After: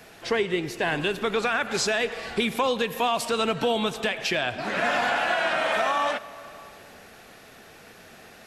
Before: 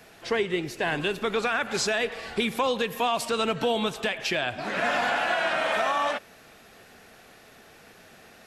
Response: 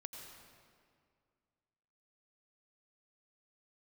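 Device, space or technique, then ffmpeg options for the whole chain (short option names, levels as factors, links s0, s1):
compressed reverb return: -filter_complex "[0:a]asplit=2[s0][s1];[1:a]atrim=start_sample=2205[s2];[s1][s2]afir=irnorm=-1:irlink=0,acompressor=threshold=0.0158:ratio=6,volume=0.794[s3];[s0][s3]amix=inputs=2:normalize=0"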